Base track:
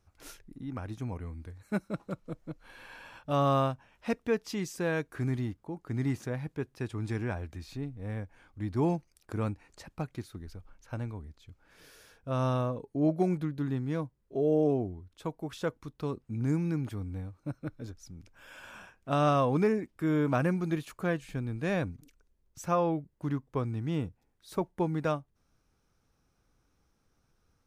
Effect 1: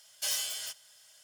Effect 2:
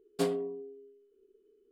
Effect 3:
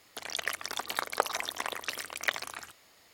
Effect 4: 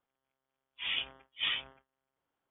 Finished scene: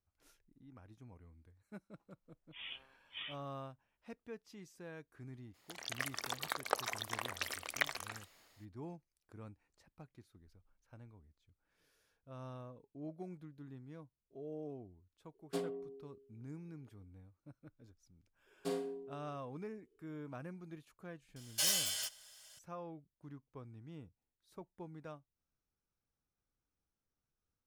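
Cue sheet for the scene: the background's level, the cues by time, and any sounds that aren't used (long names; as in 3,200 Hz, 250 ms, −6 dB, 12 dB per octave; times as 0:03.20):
base track −19.5 dB
0:01.74: mix in 4 −13.5 dB
0:05.53: mix in 3 −10.5 dB, fades 0.02 s + automatic gain control gain up to 6.5 dB
0:15.34: mix in 2 −9 dB
0:18.46: mix in 2 −10 dB + four-comb reverb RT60 0.38 s, combs from 33 ms, DRR 4 dB
0:21.36: mix in 1 −0.5 dB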